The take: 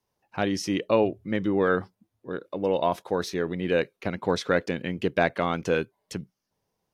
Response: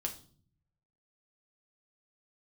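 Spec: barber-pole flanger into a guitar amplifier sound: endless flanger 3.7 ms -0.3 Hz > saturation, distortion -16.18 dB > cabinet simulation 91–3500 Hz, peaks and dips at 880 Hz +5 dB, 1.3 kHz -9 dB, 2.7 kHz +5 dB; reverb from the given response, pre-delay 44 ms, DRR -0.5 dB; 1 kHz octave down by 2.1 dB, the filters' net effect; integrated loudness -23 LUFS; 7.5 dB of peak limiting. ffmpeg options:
-filter_complex "[0:a]equalizer=f=1000:t=o:g=-4,alimiter=limit=0.158:level=0:latency=1,asplit=2[s0][s1];[1:a]atrim=start_sample=2205,adelay=44[s2];[s1][s2]afir=irnorm=-1:irlink=0,volume=1[s3];[s0][s3]amix=inputs=2:normalize=0,asplit=2[s4][s5];[s5]adelay=3.7,afreqshift=-0.3[s6];[s4][s6]amix=inputs=2:normalize=1,asoftclip=threshold=0.0841,highpass=91,equalizer=f=880:t=q:w=4:g=5,equalizer=f=1300:t=q:w=4:g=-9,equalizer=f=2700:t=q:w=4:g=5,lowpass=f=3500:w=0.5412,lowpass=f=3500:w=1.3066,volume=2.66"

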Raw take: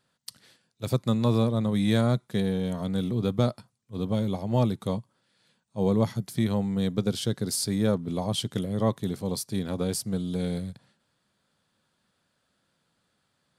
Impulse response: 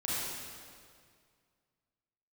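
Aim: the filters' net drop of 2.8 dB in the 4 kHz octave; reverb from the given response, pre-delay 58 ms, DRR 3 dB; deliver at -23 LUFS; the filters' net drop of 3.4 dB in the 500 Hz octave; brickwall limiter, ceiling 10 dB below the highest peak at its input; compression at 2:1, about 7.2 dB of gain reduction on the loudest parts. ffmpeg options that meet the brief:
-filter_complex "[0:a]equalizer=f=500:t=o:g=-4,equalizer=f=4000:t=o:g=-3.5,acompressor=threshold=0.0224:ratio=2,alimiter=level_in=1.58:limit=0.0631:level=0:latency=1,volume=0.631,asplit=2[s0][s1];[1:a]atrim=start_sample=2205,adelay=58[s2];[s1][s2]afir=irnorm=-1:irlink=0,volume=0.355[s3];[s0][s3]amix=inputs=2:normalize=0,volume=4.22"

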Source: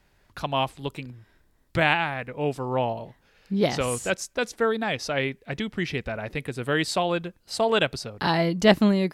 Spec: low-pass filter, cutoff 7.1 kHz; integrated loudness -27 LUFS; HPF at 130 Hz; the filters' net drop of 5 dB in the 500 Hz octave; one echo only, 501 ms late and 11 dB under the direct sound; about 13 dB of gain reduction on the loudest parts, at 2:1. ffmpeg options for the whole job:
-af "highpass=130,lowpass=7100,equalizer=f=500:t=o:g=-6.5,acompressor=threshold=0.0112:ratio=2,aecho=1:1:501:0.282,volume=3.16"

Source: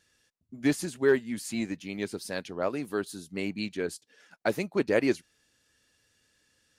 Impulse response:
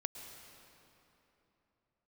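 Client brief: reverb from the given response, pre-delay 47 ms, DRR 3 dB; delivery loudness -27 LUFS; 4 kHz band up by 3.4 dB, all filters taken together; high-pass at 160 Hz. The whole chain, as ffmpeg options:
-filter_complex "[0:a]highpass=160,equalizer=f=4000:t=o:g=4,asplit=2[s0][s1];[1:a]atrim=start_sample=2205,adelay=47[s2];[s1][s2]afir=irnorm=-1:irlink=0,volume=0.794[s3];[s0][s3]amix=inputs=2:normalize=0,volume=1.33"

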